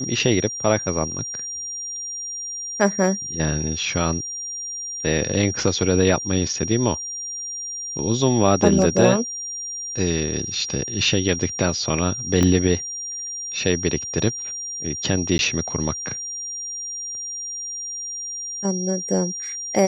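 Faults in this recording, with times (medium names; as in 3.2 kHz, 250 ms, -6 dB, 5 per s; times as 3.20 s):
whine 5.7 kHz -28 dBFS
12.43 s: pop -7 dBFS
15.38–15.39 s: dropout 11 ms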